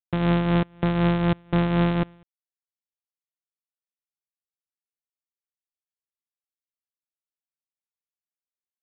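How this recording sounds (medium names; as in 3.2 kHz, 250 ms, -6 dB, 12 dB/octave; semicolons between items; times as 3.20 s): a buzz of ramps at a fixed pitch in blocks of 256 samples; tremolo triangle 4 Hz, depth 55%; G.726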